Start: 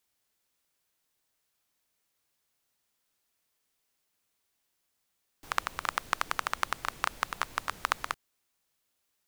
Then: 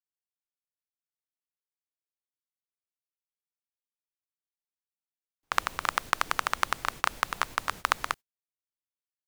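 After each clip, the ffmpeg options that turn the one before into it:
-af "agate=range=-33dB:threshold=-44dB:ratio=16:detection=peak,volume=3.5dB"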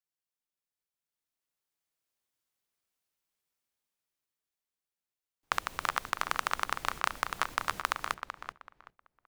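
-filter_complex "[0:a]dynaudnorm=f=240:g=13:m=9.5dB,alimiter=limit=-8dB:level=0:latency=1:release=443,asplit=2[a][b];[b]adelay=381,lowpass=f=2.8k:p=1,volume=-7.5dB,asplit=2[c][d];[d]adelay=381,lowpass=f=2.8k:p=1,volume=0.26,asplit=2[e][f];[f]adelay=381,lowpass=f=2.8k:p=1,volume=0.26[g];[a][c][e][g]amix=inputs=4:normalize=0"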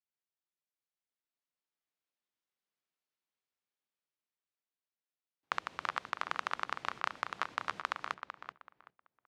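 -af "highpass=130,lowpass=4.4k,volume=-4.5dB"

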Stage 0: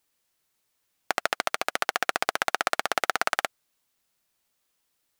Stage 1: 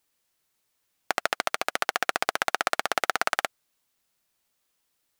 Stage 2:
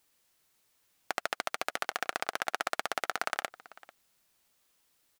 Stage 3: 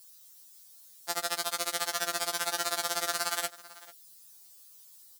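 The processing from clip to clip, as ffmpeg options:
-af anull
-filter_complex "[0:a]alimiter=limit=-13.5dB:level=0:latency=1:release=115,asplit=2[a][b];[b]adelay=443.1,volume=-19dB,highshelf=f=4k:g=-9.97[c];[a][c]amix=inputs=2:normalize=0,volume=3.5dB"
-filter_complex "[0:a]aexciter=amount=1.9:drive=9.9:freq=3.6k,asplit=2[a][b];[b]asoftclip=type=hard:threshold=-20dB,volume=-5.5dB[c];[a][c]amix=inputs=2:normalize=0,afftfilt=real='re*2.83*eq(mod(b,8),0)':imag='im*2.83*eq(mod(b,8),0)':win_size=2048:overlap=0.75"

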